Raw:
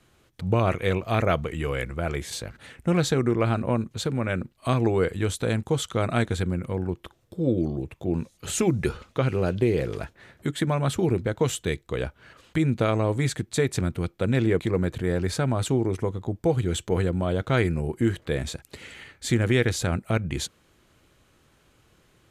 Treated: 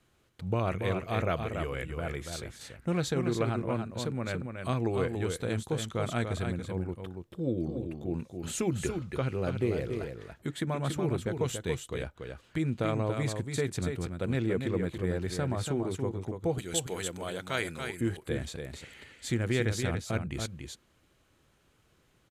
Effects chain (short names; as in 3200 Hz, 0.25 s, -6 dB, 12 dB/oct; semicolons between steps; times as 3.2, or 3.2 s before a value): 16.58–18.01 tilt +3.5 dB/oct; echo 0.284 s -6 dB; gain -7.5 dB